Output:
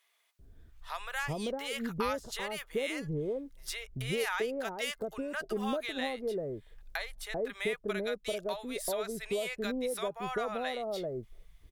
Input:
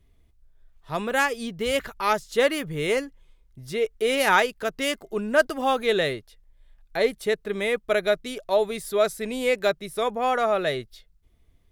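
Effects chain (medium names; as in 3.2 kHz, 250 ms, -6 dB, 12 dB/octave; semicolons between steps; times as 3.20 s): compression 6:1, threshold -36 dBFS, peak gain reduction 21 dB; bands offset in time highs, lows 390 ms, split 790 Hz; trim +5 dB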